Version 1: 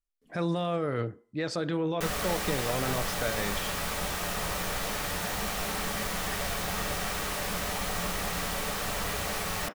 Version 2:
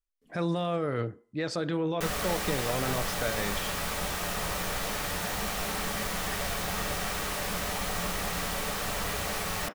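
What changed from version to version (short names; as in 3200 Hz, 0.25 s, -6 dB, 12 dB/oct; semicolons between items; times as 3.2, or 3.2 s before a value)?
none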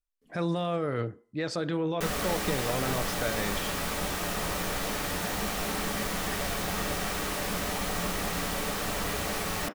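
background: add bell 290 Hz +6.5 dB 0.96 oct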